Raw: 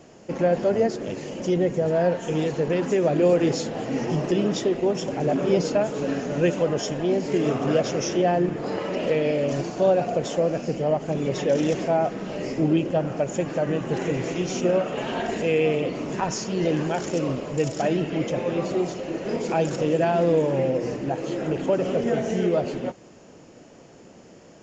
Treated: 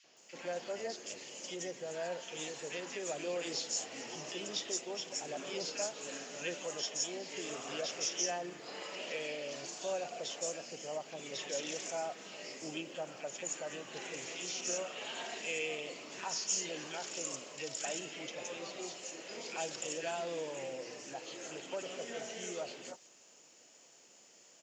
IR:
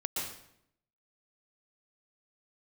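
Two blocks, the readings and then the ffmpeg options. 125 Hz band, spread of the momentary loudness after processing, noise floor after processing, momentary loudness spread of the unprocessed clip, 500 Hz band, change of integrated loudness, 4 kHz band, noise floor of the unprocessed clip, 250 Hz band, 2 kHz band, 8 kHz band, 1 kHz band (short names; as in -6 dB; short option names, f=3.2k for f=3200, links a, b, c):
-29.0 dB, 9 LU, -61 dBFS, 7 LU, -19.0 dB, -15.5 dB, -3.5 dB, -49 dBFS, -24.0 dB, -9.0 dB, n/a, -15.5 dB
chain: -filter_complex "[0:a]aderivative,acrossover=split=1600|5400[a][b][c];[a]adelay=40[d];[c]adelay=170[e];[d][b][e]amix=inputs=3:normalize=0,volume=4dB"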